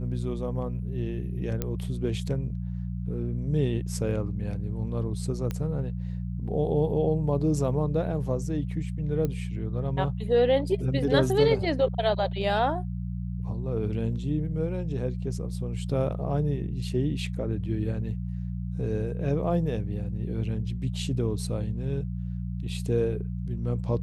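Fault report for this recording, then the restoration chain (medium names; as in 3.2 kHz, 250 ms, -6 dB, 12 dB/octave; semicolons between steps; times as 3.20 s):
hum 60 Hz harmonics 3 -32 dBFS
1.62 s: pop -14 dBFS
5.51 s: pop -18 dBFS
9.25 s: pop -17 dBFS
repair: de-click; de-hum 60 Hz, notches 3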